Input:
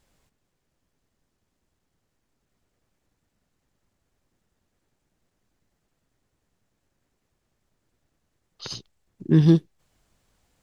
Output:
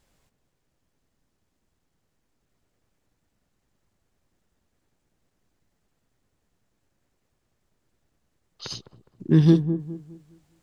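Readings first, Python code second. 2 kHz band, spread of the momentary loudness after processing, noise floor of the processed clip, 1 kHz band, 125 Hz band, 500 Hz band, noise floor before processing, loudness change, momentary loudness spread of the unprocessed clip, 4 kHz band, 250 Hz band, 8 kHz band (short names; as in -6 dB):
0.0 dB, 21 LU, -75 dBFS, 0.0 dB, 0.0 dB, +0.5 dB, -77 dBFS, -1.0 dB, 19 LU, 0.0 dB, +0.5 dB, n/a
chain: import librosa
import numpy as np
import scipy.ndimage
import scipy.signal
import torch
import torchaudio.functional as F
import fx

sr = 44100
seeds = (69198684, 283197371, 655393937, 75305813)

y = fx.echo_wet_lowpass(x, sr, ms=206, feedback_pct=32, hz=880.0, wet_db=-9.5)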